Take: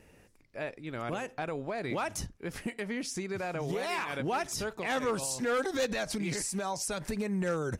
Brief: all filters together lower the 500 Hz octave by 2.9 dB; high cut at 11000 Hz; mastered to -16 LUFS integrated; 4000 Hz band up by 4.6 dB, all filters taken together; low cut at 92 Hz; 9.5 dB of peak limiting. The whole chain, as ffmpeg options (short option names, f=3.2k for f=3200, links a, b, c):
-af "highpass=92,lowpass=11k,equalizer=f=500:t=o:g=-3.5,equalizer=f=4k:t=o:g=6,volume=20.5dB,alimiter=limit=-7dB:level=0:latency=1"